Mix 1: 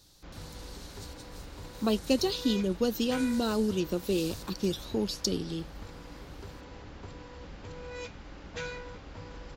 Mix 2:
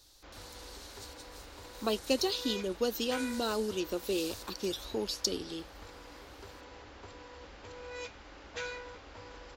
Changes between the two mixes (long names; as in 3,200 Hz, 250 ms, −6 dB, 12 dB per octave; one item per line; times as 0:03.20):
background: add high-pass filter 93 Hz 6 dB per octave
master: add parametric band 160 Hz −15 dB 1.2 octaves